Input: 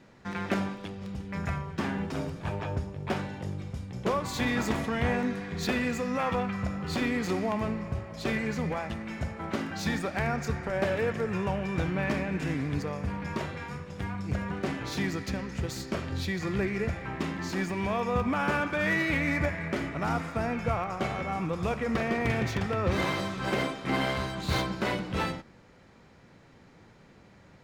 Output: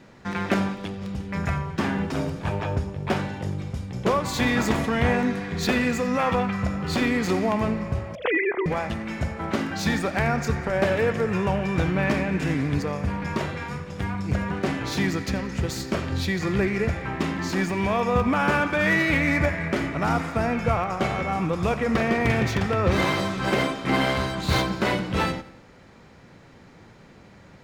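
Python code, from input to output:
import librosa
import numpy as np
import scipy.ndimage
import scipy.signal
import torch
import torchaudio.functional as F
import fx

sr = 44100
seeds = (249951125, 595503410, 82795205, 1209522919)

y = fx.sine_speech(x, sr, at=(8.15, 8.66))
y = fx.echo_feedback(y, sr, ms=88, feedback_pct=47, wet_db=-19.5)
y = F.gain(torch.from_numpy(y), 6.0).numpy()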